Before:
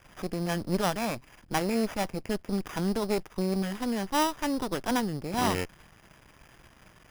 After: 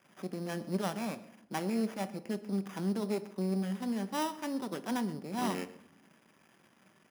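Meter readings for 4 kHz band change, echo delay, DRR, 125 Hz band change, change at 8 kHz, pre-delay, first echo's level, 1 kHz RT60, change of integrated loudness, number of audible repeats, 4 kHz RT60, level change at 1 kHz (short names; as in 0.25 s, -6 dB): -9.0 dB, 0.128 s, 10.0 dB, -5.0 dB, -8.5 dB, 5 ms, -20.5 dB, 0.75 s, -5.5 dB, 1, 0.45 s, -8.0 dB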